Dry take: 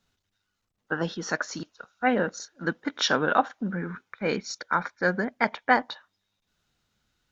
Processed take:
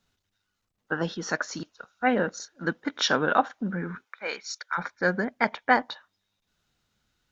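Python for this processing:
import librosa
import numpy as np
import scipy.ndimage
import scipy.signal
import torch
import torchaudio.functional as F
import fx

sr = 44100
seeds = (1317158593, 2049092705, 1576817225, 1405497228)

y = fx.highpass(x, sr, hz=fx.line((4.04, 520.0), (4.77, 1500.0)), slope=12, at=(4.04, 4.77), fade=0.02)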